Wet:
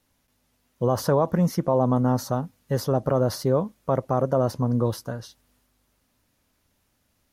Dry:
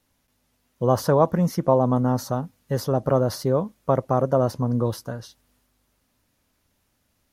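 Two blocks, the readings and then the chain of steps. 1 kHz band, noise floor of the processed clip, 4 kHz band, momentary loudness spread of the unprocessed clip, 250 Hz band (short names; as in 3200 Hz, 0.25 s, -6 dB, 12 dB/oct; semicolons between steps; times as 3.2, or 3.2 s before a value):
-2.5 dB, -71 dBFS, 0.0 dB, 10 LU, -0.5 dB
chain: limiter -10.5 dBFS, peak gain reduction 5.5 dB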